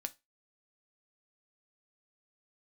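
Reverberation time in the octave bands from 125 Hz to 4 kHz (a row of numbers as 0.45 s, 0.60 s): 0.20 s, 0.20 s, 0.20 s, 0.20 s, 0.20 s, 0.20 s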